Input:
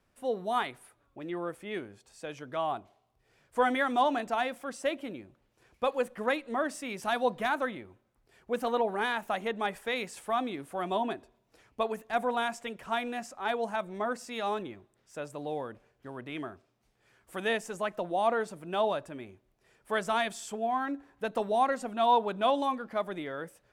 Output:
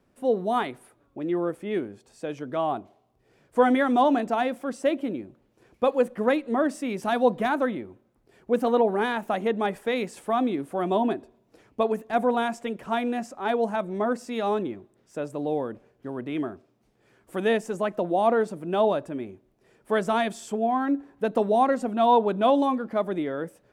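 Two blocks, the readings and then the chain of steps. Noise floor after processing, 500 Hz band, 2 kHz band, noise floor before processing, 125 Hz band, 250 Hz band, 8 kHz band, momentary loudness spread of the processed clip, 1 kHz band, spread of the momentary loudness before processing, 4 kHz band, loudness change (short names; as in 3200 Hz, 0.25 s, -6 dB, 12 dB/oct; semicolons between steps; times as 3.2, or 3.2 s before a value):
-66 dBFS, +7.5 dB, +1.5 dB, -73 dBFS, +9.0 dB, +10.5 dB, n/a, 13 LU, +4.0 dB, 15 LU, +0.5 dB, +6.0 dB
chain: bell 280 Hz +11 dB 2.6 oct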